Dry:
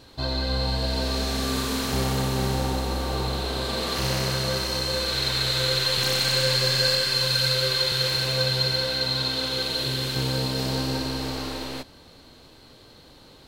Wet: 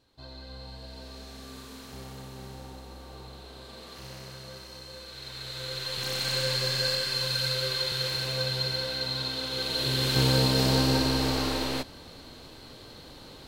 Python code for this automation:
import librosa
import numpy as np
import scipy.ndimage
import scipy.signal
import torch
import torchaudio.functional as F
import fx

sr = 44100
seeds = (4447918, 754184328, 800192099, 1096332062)

y = fx.gain(x, sr, db=fx.line((5.13, -18.0), (6.32, -6.0), (9.47, -6.0), (10.21, 3.0)))